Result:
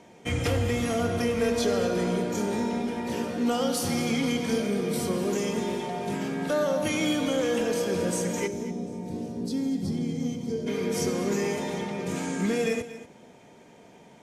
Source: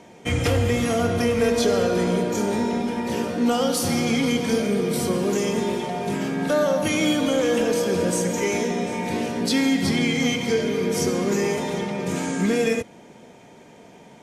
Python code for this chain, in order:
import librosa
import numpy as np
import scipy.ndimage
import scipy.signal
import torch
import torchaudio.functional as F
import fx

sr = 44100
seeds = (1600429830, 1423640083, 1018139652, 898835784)

y = fx.curve_eq(x, sr, hz=(170.0, 460.0, 2200.0, 5000.0), db=(0, -5, -22, -10), at=(8.46, 10.66), fade=0.02)
y = y + 10.0 ** (-14.5 / 20.0) * np.pad(y, (int(235 * sr / 1000.0), 0))[:len(y)]
y = F.gain(torch.from_numpy(y), -5.0).numpy()